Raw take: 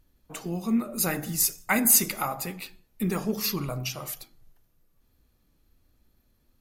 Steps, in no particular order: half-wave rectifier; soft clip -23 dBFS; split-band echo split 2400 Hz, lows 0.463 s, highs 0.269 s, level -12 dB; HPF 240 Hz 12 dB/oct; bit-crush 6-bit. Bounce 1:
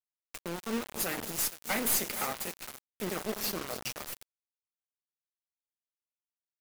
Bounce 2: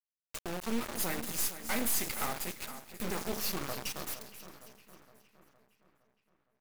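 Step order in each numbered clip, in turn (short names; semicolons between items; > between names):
half-wave rectifier > HPF > soft clip > split-band echo > bit-crush; HPF > soft clip > bit-crush > split-band echo > half-wave rectifier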